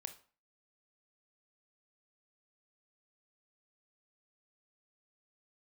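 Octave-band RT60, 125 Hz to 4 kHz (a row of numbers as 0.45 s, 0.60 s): 0.40 s, 0.45 s, 0.40 s, 0.40 s, 0.40 s, 0.35 s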